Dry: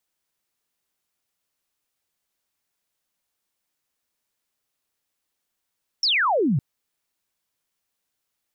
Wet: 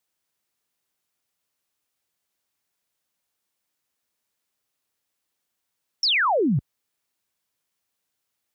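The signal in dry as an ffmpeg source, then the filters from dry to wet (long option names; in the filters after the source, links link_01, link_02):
-f lavfi -i "aevalsrc='0.133*clip(t/0.002,0,1)*clip((0.56-t)/0.002,0,1)*sin(2*PI*5700*0.56/log(120/5700)*(exp(log(120/5700)*t/0.56)-1))':duration=0.56:sample_rate=44100"
-af "highpass=51"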